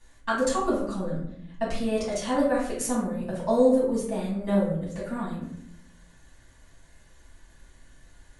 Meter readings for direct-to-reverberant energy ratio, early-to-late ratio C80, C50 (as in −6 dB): −7.0 dB, 8.0 dB, 3.0 dB